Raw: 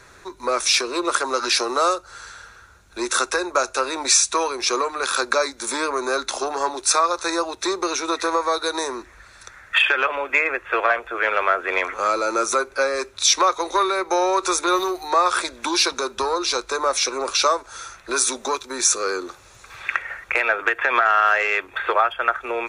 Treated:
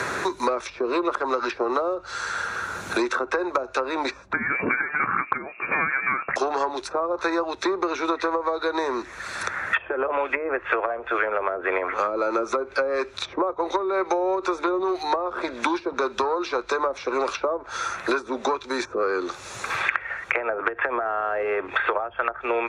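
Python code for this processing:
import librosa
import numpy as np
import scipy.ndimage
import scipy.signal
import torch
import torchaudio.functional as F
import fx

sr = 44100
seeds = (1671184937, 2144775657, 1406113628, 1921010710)

y = fx.freq_invert(x, sr, carrier_hz=2700, at=(4.33, 6.36))
y = scipy.signal.sosfilt(scipy.signal.butter(2, 52.0, 'highpass', fs=sr, output='sos'), y)
y = fx.env_lowpass_down(y, sr, base_hz=560.0, full_db=-15.5)
y = fx.band_squash(y, sr, depth_pct=100)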